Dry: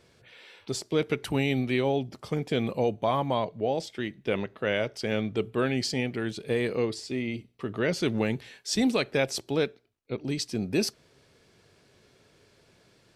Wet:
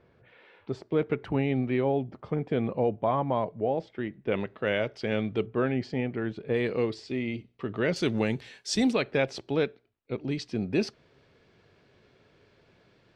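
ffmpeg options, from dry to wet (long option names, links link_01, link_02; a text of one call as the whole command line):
ffmpeg -i in.wav -af "asetnsamples=nb_out_samples=441:pad=0,asendcmd='4.32 lowpass f 3500;5.46 lowpass f 1800;6.54 lowpass f 3700;7.96 lowpass f 8000;8.93 lowpass f 3300',lowpass=1700" out.wav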